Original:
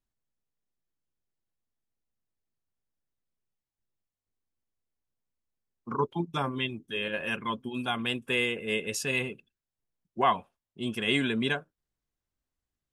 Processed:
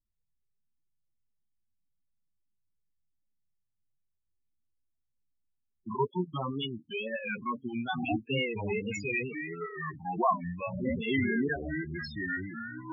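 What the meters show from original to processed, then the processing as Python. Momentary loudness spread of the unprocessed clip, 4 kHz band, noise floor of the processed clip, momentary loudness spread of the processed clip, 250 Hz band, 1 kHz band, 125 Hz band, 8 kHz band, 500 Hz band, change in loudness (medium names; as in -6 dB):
9 LU, -7.0 dB, -80 dBFS, 9 LU, +1.0 dB, -1.5 dB, +1.0 dB, -11.5 dB, -0.5 dB, -3.0 dB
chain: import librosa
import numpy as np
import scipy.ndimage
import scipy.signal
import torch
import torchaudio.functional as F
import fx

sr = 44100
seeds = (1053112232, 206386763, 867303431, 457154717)

y = fx.wow_flutter(x, sr, seeds[0], rate_hz=2.1, depth_cents=120.0)
y = fx.echo_pitch(y, sr, ms=93, semitones=-5, count=2, db_per_echo=-3.0)
y = fx.spec_topn(y, sr, count=8)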